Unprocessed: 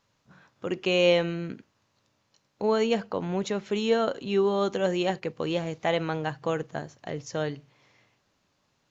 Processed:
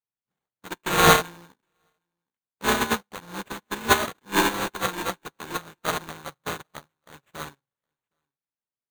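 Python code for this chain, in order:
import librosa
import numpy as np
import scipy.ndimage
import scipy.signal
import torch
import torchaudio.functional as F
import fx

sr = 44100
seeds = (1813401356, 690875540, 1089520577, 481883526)

y = fx.bit_reversed(x, sr, seeds[0], block=64)
y = fx.sample_hold(y, sr, seeds[1], rate_hz=5200.0, jitter_pct=0)
y = fx.low_shelf(y, sr, hz=160.0, db=-4.0)
y = y + 10.0 ** (-22.0 / 20.0) * np.pad(y, (int(765 * sr / 1000.0), 0))[:len(y)]
y = fx.upward_expand(y, sr, threshold_db=-44.0, expansion=2.5)
y = F.gain(torch.from_numpy(y), 7.5).numpy()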